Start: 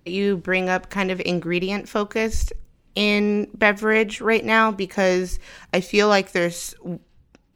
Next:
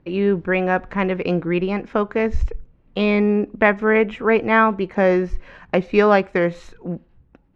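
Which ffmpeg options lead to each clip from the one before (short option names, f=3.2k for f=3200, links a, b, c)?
-af "lowpass=1.8k,volume=3dB"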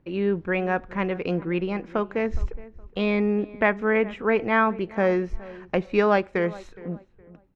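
-filter_complex "[0:a]asplit=2[a][b];[b]adelay=416,lowpass=f=1.8k:p=1,volume=-19dB,asplit=2[c][d];[d]adelay=416,lowpass=f=1.8k:p=1,volume=0.3,asplit=2[e][f];[f]adelay=416,lowpass=f=1.8k:p=1,volume=0.3[g];[a][c][e][g]amix=inputs=4:normalize=0,volume=-5.5dB"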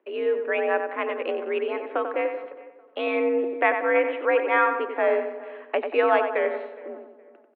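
-filter_complex "[0:a]asplit=2[a][b];[b]adelay=92,lowpass=f=2.2k:p=1,volume=-6dB,asplit=2[c][d];[d]adelay=92,lowpass=f=2.2k:p=1,volume=0.52,asplit=2[e][f];[f]adelay=92,lowpass=f=2.2k:p=1,volume=0.52,asplit=2[g][h];[h]adelay=92,lowpass=f=2.2k:p=1,volume=0.52,asplit=2[i][j];[j]adelay=92,lowpass=f=2.2k:p=1,volume=0.52,asplit=2[k][l];[l]adelay=92,lowpass=f=2.2k:p=1,volume=0.52[m];[a][c][e][g][i][k][m]amix=inputs=7:normalize=0,highpass=f=280:t=q:w=0.5412,highpass=f=280:t=q:w=1.307,lowpass=f=3.3k:t=q:w=0.5176,lowpass=f=3.3k:t=q:w=0.7071,lowpass=f=3.3k:t=q:w=1.932,afreqshift=62"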